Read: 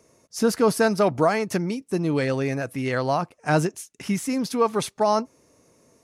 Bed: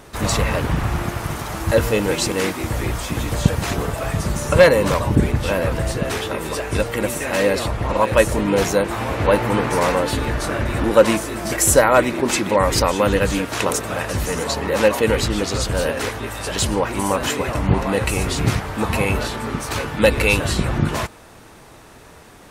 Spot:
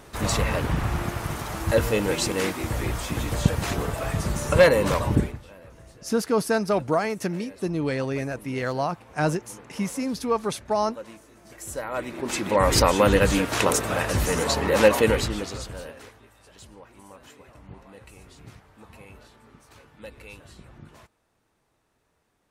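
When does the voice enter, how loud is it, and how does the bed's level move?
5.70 s, -3.0 dB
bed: 5.17 s -4.5 dB
5.48 s -27 dB
11.4 s -27 dB
12.72 s -1 dB
15 s -1 dB
16.33 s -27.5 dB

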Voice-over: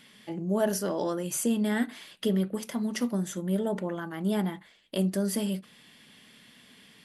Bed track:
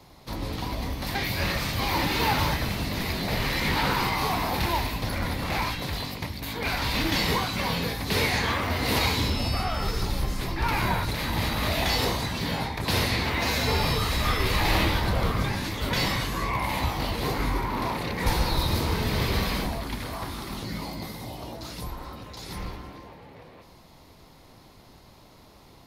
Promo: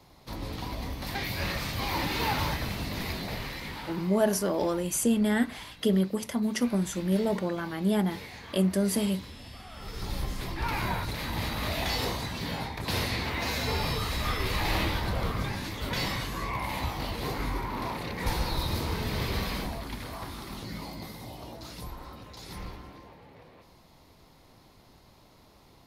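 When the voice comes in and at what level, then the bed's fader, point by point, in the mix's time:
3.60 s, +2.0 dB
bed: 3.12 s -4.5 dB
4.09 s -19.5 dB
9.66 s -19.5 dB
10.13 s -5 dB

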